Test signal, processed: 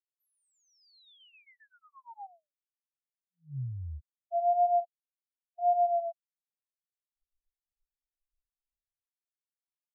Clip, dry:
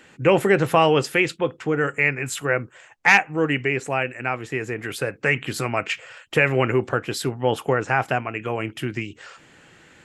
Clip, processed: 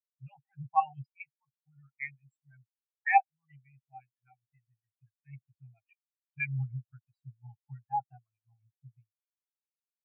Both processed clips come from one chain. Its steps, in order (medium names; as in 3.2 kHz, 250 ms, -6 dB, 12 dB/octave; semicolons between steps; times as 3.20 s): vibrato 0.92 Hz 50 cents; elliptic band-stop 140–770 Hz, stop band 40 dB; peaking EQ 460 Hz +5 dB 0.78 oct; LFO notch saw up 7.5 Hz 800–2100 Hz; spectral contrast expander 4:1; trim -6.5 dB